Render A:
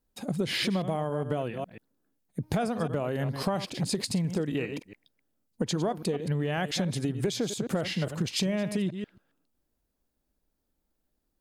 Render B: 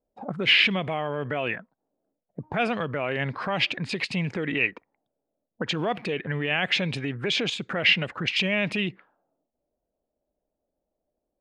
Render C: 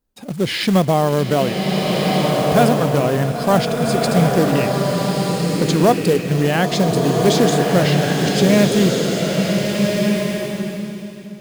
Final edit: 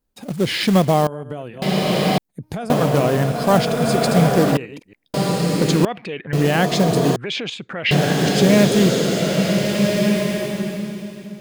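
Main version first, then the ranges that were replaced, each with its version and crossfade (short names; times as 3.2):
C
1.07–1.62 from A
2.18–2.7 from A
4.57–5.14 from A
5.85–6.33 from B
7.16–7.91 from B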